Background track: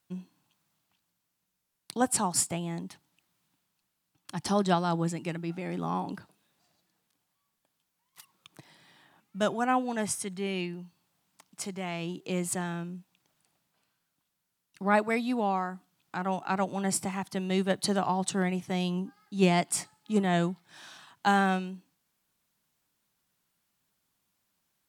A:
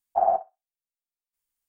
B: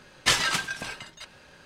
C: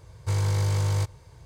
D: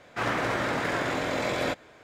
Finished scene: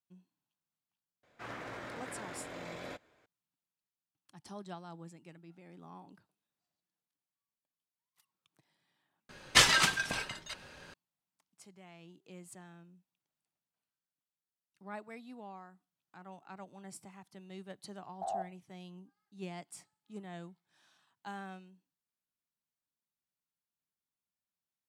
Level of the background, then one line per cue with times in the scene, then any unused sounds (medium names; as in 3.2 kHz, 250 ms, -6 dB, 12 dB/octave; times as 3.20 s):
background track -20 dB
1.23 s: add D -16.5 dB
9.29 s: replace with B -0.5 dB
18.06 s: add A -14.5 dB + spectrogram pixelated in time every 50 ms
not used: C